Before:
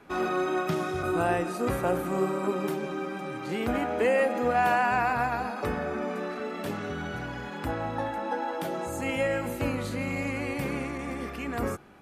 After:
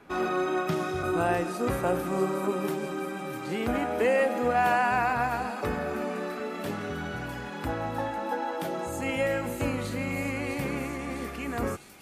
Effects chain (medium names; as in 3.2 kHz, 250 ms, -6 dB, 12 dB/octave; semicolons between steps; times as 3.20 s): feedback echo behind a high-pass 653 ms, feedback 68%, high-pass 4.7 kHz, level -5.5 dB